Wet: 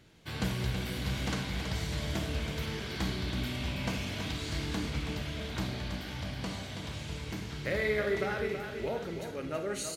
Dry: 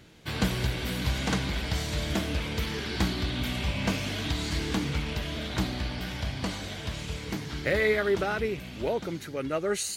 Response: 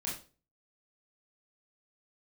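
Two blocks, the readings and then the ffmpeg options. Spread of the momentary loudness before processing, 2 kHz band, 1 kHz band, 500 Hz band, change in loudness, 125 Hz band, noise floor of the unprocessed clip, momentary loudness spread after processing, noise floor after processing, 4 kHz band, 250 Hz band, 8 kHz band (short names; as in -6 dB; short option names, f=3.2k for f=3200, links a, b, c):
8 LU, -5.0 dB, -5.0 dB, -5.0 dB, -5.0 dB, -3.5 dB, -41 dBFS, 7 LU, -42 dBFS, -5.0 dB, -5.0 dB, -5.5 dB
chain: -filter_complex "[0:a]aecho=1:1:326|652|978|1304|1630:0.422|0.198|0.0932|0.0438|0.0206,asplit=2[a][b];[1:a]atrim=start_sample=2205,asetrate=29106,aresample=44100[c];[b][c]afir=irnorm=-1:irlink=0,volume=-8.5dB[d];[a][d]amix=inputs=2:normalize=0,volume=-9dB"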